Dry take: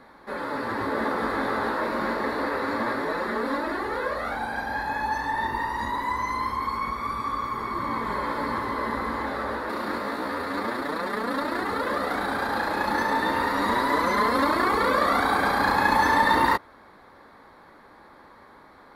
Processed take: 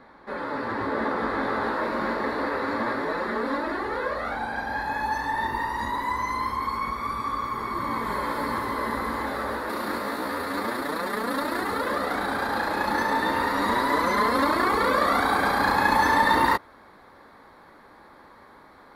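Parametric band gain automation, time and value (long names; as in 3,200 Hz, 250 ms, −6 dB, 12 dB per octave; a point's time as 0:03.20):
parametric band 14,000 Hz 1.3 octaves
0:01.27 −13 dB
0:01.80 −6.5 dB
0:04.57 −6.5 dB
0:05.06 +2.5 dB
0:07.50 +2.5 dB
0:08.13 +9.5 dB
0:11.59 +9.5 dB
0:12.10 +2 dB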